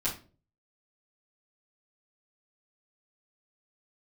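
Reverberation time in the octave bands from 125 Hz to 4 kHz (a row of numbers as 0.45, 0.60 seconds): 0.60, 0.50, 0.45, 0.30, 0.30, 0.30 seconds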